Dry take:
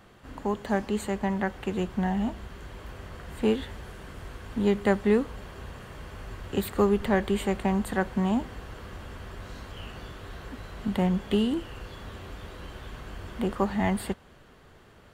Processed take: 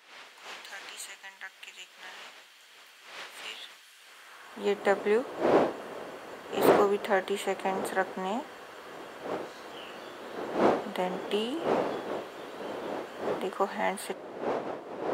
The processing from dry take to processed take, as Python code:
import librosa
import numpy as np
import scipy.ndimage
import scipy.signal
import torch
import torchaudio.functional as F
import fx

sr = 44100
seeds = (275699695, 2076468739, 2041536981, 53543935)

y = fx.dmg_wind(x, sr, seeds[0], corner_hz=400.0, level_db=-27.0)
y = fx.filter_sweep_highpass(y, sr, from_hz=2700.0, to_hz=460.0, start_s=4.07, end_s=4.67, q=0.89)